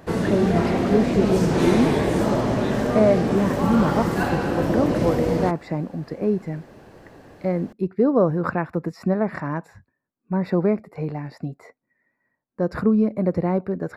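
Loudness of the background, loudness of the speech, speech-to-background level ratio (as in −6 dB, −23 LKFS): −22.0 LKFS, −24.0 LKFS, −2.0 dB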